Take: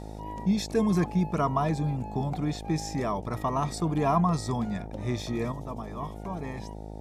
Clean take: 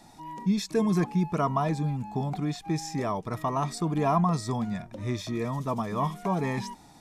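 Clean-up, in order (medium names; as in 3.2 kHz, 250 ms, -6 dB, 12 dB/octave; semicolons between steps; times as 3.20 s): de-hum 52.9 Hz, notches 17; trim 0 dB, from 5.52 s +8.5 dB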